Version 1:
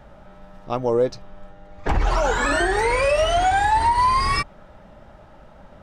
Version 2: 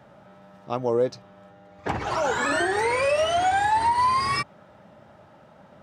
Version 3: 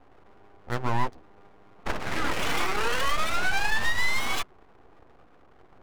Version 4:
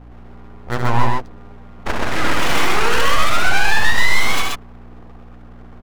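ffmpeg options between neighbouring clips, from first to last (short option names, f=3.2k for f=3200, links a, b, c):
-af "highpass=f=96:w=0.5412,highpass=f=96:w=1.3066,volume=-3dB"
-af "adynamicsmooth=sensitivity=5.5:basefreq=610,aeval=exprs='abs(val(0))':c=same"
-filter_complex "[0:a]aeval=exprs='val(0)+0.00447*(sin(2*PI*60*n/s)+sin(2*PI*2*60*n/s)/2+sin(2*PI*3*60*n/s)/3+sin(2*PI*4*60*n/s)/4+sin(2*PI*5*60*n/s)/5)':c=same,asplit=2[a][b];[b]aecho=0:1:69.97|128.3:0.501|0.794[c];[a][c]amix=inputs=2:normalize=0,volume=7dB"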